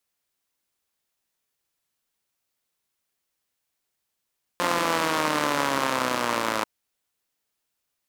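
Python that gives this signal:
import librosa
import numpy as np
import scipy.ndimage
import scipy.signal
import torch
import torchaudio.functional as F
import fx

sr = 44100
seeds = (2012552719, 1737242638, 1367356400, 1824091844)

y = fx.engine_four_rev(sr, seeds[0], length_s=2.04, rpm=5300, resonances_hz=(300.0, 550.0, 980.0), end_rpm=3200)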